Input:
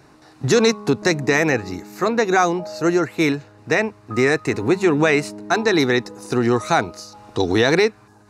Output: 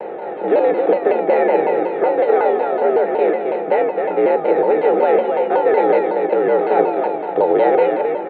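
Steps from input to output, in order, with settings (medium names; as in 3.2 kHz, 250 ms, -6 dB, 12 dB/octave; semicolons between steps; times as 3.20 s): spectral levelling over time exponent 0.4; gate with hold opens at -16 dBFS; feedback comb 260 Hz, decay 0.58 s, harmonics odd, mix 90%; frequency shift +68 Hz; high-order bell 560 Hz +15 dB 1.2 oct; resampled via 8 kHz; distance through air 320 m; feedback delay 266 ms, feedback 33%, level -5 dB; vibrato with a chosen wave saw down 5.4 Hz, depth 160 cents; trim +4 dB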